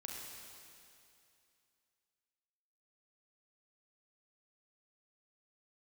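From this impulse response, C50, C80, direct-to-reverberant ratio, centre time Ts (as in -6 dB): -0.5 dB, 1.0 dB, -2.0 dB, 0.126 s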